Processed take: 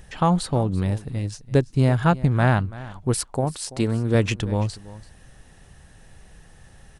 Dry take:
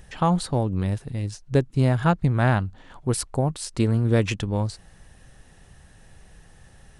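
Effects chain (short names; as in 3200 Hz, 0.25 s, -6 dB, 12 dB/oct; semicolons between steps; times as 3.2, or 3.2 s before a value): 3.2–4.15 low shelf 140 Hz -8 dB; on a send: echo 0.335 s -18 dB; on the sum: gain +1.5 dB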